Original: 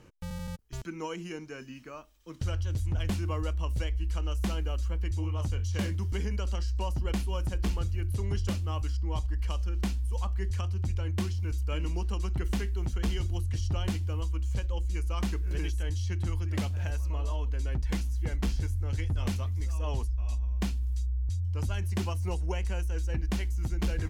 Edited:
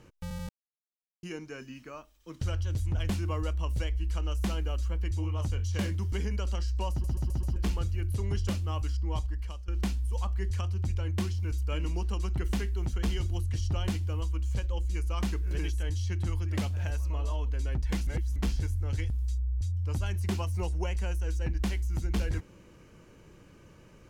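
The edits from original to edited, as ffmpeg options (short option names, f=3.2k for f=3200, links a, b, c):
-filter_complex "[0:a]asplit=12[a][b][c][d][e][f][g][h][i][j][k][l];[a]atrim=end=0.49,asetpts=PTS-STARTPTS,afade=t=out:st=0.486:d=0.004:c=hsin[m];[b]atrim=start=0.49:end=1.23,asetpts=PTS-STARTPTS,volume=0[n];[c]atrim=start=1.23:end=7.042,asetpts=PTS-STARTPTS,afade=t=in:d=0.004:c=hsin[o];[d]atrim=start=6.908:end=7.042[p];[e]atrim=start=6.908:end=7.042[q];[f]atrim=start=6.908:end=7.042[r];[g]atrim=start=6.908:end=7.042[s];[h]atrim=start=7.558:end=9.68,asetpts=PTS-STARTPTS,afade=t=out:st=1.612:d=0.51:silence=0.158489[t];[i]atrim=start=9.68:end=18.072,asetpts=PTS-STARTPTS,afade=t=in:d=0.004:c=hsin:silence=0.158489[u];[j]atrim=start=18.068:end=18.362,asetpts=PTS-STARTPTS,areverse[v];[k]atrim=start=18.358:end=19.102[w];[l]atrim=start=20.778[x];[m][n][o]concat=n=3:v=0:a=1[y];[y][p]acrossfade=d=0.004:c1=hsin:c2=hsin[z];[z][q]acrossfade=d=0.004:c1=hsin:c2=hsin[aa];[aa][r]acrossfade=d=0.004:c1=hsin:c2=hsin[ab];[ab][s]acrossfade=d=0.004:c1=hsin:c2=hsin[ac];[t][u]concat=n=2:v=0:a=1[ad];[ac][ad]acrossfade=d=0.004:c1=hsin:c2=hsin[ae];[ae][v]acrossfade=d=0.004:c1=hsin:c2=hsin[af];[af][w]acrossfade=d=0.004:c1=hsin:c2=hsin[ag];[ag][x]acrossfade=d=0.004:c1=hsin:c2=hsin"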